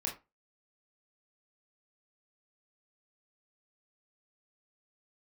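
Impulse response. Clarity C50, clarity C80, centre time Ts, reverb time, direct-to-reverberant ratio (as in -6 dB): 10.0 dB, 17.5 dB, 22 ms, 0.25 s, -1.5 dB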